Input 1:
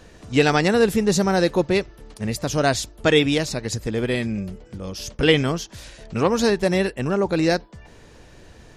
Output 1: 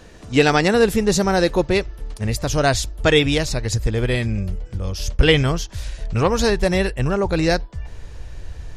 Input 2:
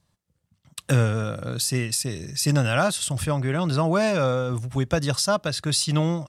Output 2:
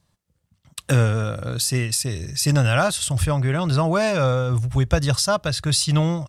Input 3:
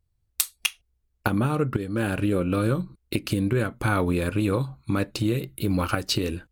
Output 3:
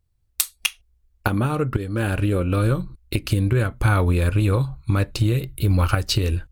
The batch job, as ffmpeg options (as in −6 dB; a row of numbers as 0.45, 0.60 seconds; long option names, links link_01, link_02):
-af "asubboost=boost=7.5:cutoff=82,volume=2.5dB"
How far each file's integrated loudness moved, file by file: +1.5, +3.0, +4.0 LU